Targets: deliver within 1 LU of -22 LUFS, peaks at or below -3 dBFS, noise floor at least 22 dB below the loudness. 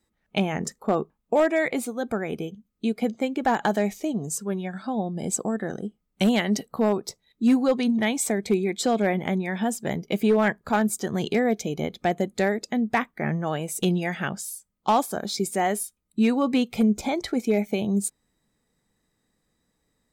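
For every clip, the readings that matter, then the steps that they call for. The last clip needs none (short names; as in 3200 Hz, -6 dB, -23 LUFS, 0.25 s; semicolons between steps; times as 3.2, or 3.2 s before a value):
clipped 0.4%; flat tops at -13.0 dBFS; loudness -25.5 LUFS; peak -13.0 dBFS; loudness target -22.0 LUFS
-> clip repair -13 dBFS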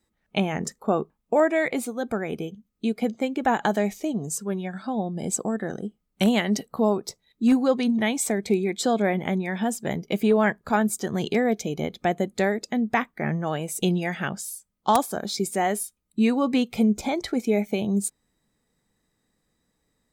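clipped 0.0%; loudness -25.5 LUFS; peak -4.0 dBFS; loudness target -22.0 LUFS
-> gain +3.5 dB; limiter -3 dBFS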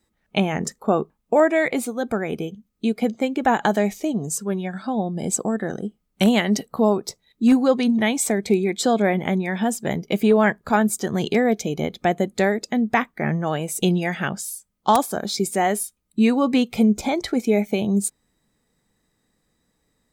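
loudness -22.0 LUFS; peak -3.0 dBFS; noise floor -72 dBFS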